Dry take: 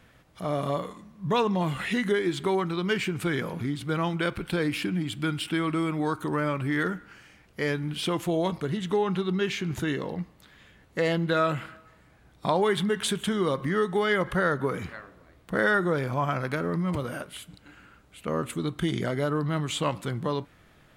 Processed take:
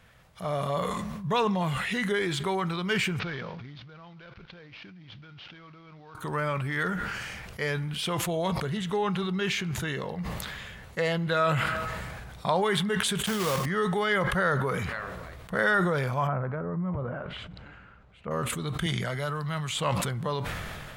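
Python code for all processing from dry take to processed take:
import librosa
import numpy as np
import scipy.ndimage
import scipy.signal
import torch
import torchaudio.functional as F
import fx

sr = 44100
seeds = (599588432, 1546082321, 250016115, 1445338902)

y = fx.chain(x, sr, fx.cvsd(bps=32000),
    fx.lowpass(hz=4600.0, slope=24),
    fx.level_steps(step_db=23), at=(3.19, 6.15))
y = fx.chain(y, sr, fx.block_float(bits=3),
    fx.highpass(hz=55.0, slope=12),
    fx.notch(hz=3900.0, q=20.0), at=(13.26, 13.67))
y = fx.chain(y, sr, fx.env_lowpass_down(base_hz=1300.0, full_db=-29.0),
    fx.spacing_loss(db_at_10k=28), at=(16.27, 18.31))
y = fx.chain(y, sr, fx.peak_eq(hz=350.0, db=-6.5, octaves=1.9),
    fx.band_squash(depth_pct=40), at=(18.86, 19.75))
y = fx.peak_eq(y, sr, hz=300.0, db=-11.5, octaves=0.68)
y = fx.sustainer(y, sr, db_per_s=24.0)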